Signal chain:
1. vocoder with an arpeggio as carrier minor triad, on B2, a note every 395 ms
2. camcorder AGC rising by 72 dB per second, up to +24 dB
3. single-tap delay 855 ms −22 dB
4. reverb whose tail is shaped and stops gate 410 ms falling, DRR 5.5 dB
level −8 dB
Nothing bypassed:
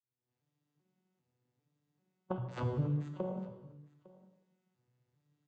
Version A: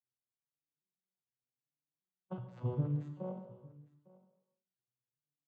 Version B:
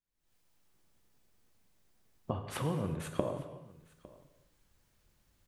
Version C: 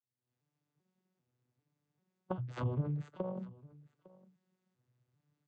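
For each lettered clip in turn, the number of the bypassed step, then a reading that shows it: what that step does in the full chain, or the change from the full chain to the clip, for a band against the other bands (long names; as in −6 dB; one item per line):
2, change in crest factor +1.5 dB
1, 125 Hz band −5.5 dB
4, change in momentary loudness spread −4 LU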